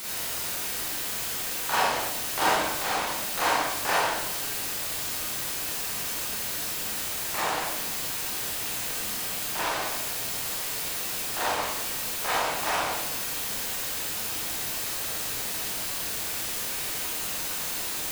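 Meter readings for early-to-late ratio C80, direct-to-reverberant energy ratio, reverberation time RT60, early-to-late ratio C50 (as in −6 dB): 2.0 dB, −7.0 dB, 1.0 s, −2.0 dB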